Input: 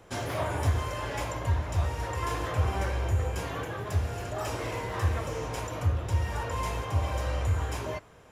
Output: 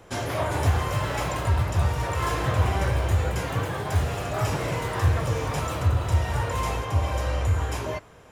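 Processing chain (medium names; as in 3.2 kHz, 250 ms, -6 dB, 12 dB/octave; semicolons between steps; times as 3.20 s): ever faster or slower copies 425 ms, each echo +4 st, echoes 2, each echo -6 dB; trim +4 dB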